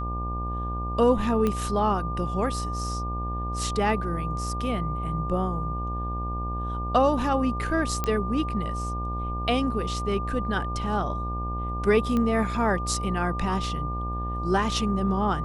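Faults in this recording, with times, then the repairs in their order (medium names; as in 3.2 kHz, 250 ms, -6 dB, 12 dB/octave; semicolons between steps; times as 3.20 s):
buzz 60 Hz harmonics 19 -31 dBFS
whine 1.2 kHz -32 dBFS
1.47 s: pop -14 dBFS
8.04 s: pop -12 dBFS
12.17 s: pop -16 dBFS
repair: de-click; band-stop 1.2 kHz, Q 30; de-hum 60 Hz, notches 19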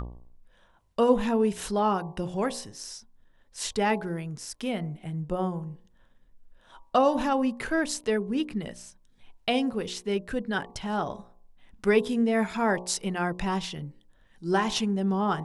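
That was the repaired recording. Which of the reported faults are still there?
nothing left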